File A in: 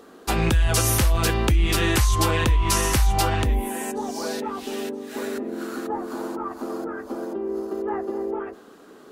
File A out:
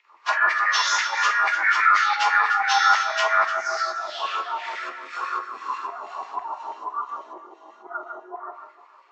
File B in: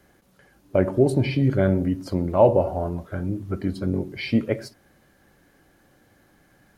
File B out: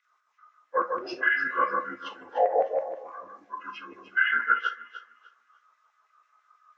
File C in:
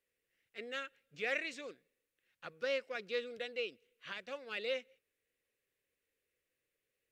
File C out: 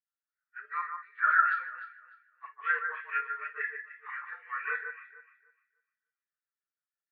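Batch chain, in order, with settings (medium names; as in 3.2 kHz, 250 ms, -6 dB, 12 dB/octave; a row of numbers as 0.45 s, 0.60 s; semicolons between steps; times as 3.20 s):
frequency axis rescaled in octaves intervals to 84%; low-pass 7.3 kHz 24 dB/octave; hum notches 60/120/180/240/300 Hz; dynamic bell 1.4 kHz, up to +7 dB, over -52 dBFS, Q 8; in parallel at -1 dB: level held to a coarse grid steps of 13 dB; on the sum: LFO high-pass saw down 6.1 Hz 900–2100 Hz; compression 2.5:1, threshold -27 dBFS; on a send: echo whose repeats swap between lows and highs 150 ms, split 1.9 kHz, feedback 60%, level -3.5 dB; on the sum: gated-style reverb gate 80 ms flat, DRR 6.5 dB; spectral contrast expander 1.5:1; trim +6 dB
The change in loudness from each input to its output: +2.5 LU, -4.0 LU, +9.0 LU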